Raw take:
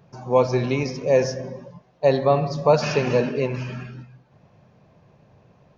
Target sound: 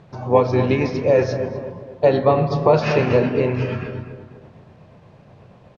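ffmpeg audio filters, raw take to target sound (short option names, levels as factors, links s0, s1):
-filter_complex "[0:a]asplit=3[s0][s1][s2];[s1]asetrate=33038,aresample=44100,atempo=1.33484,volume=0.178[s3];[s2]asetrate=35002,aresample=44100,atempo=1.25992,volume=0.282[s4];[s0][s3][s4]amix=inputs=3:normalize=0,asplit=2[s5][s6];[s6]acompressor=threshold=0.0501:ratio=6,volume=1.06[s7];[s5][s7]amix=inputs=2:normalize=0,tremolo=f=8.3:d=0.33,acrusher=bits=9:mix=0:aa=0.000001,lowpass=3500,asplit=2[s8][s9];[s9]adelay=32,volume=0.224[s10];[s8][s10]amix=inputs=2:normalize=0,asplit=2[s11][s12];[s12]adelay=243,lowpass=f=1700:p=1,volume=0.316,asplit=2[s13][s14];[s14]adelay=243,lowpass=f=1700:p=1,volume=0.49,asplit=2[s15][s16];[s16]adelay=243,lowpass=f=1700:p=1,volume=0.49,asplit=2[s17][s18];[s18]adelay=243,lowpass=f=1700:p=1,volume=0.49,asplit=2[s19][s20];[s20]adelay=243,lowpass=f=1700:p=1,volume=0.49[s21];[s13][s15][s17][s19][s21]amix=inputs=5:normalize=0[s22];[s11][s22]amix=inputs=2:normalize=0,volume=1.19"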